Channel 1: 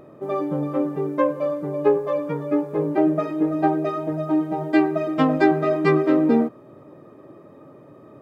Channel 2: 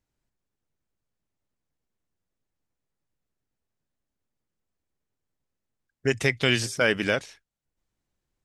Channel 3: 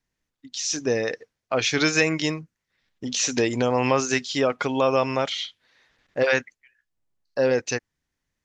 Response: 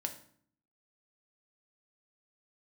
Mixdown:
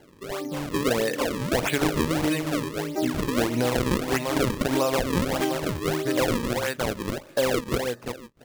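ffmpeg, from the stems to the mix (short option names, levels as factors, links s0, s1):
-filter_complex "[0:a]volume=0.447[s0];[1:a]volume=0.501,asplit=2[s1][s2];[s2]volume=0.282[s3];[2:a]volume=1.12,asplit=3[s4][s5][s6];[s5]volume=0.668[s7];[s6]volume=0.473[s8];[3:a]atrim=start_sample=2205[s9];[s3][s7]amix=inputs=2:normalize=0[s10];[s10][s9]afir=irnorm=-1:irlink=0[s11];[s8]aecho=0:1:345|690|1035:1|0.15|0.0225[s12];[s0][s1][s4][s11][s12]amix=inputs=5:normalize=0,lowpass=f=3100:w=0.5412,lowpass=f=3100:w=1.3066,acrusher=samples=35:mix=1:aa=0.000001:lfo=1:lforange=56:lforate=1.6,acompressor=threshold=0.0891:ratio=4"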